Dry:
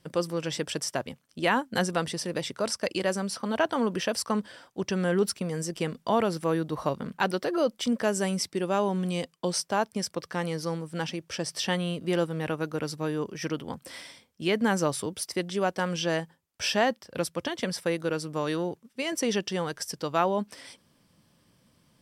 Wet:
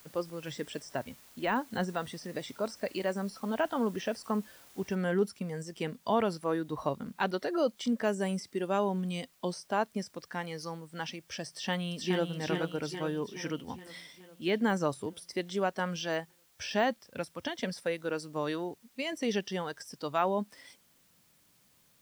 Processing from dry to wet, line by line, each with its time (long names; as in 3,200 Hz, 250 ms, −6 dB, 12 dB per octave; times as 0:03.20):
0:04.95: noise floor change −45 dB −57 dB
0:11.49–0:12.29: delay throw 420 ms, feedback 65%, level −5 dB
whole clip: de-essing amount 80%; noise reduction from a noise print of the clip's start 7 dB; level −3 dB